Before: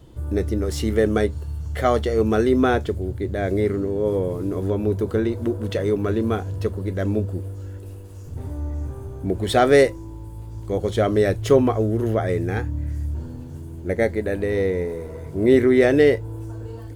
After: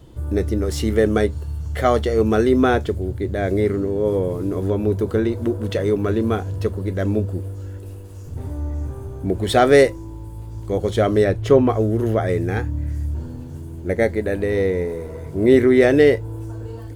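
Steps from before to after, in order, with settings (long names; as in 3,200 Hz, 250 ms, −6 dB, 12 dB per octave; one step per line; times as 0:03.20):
0:11.24–0:11.69: high-shelf EQ 4,800 Hz −11 dB
level +2 dB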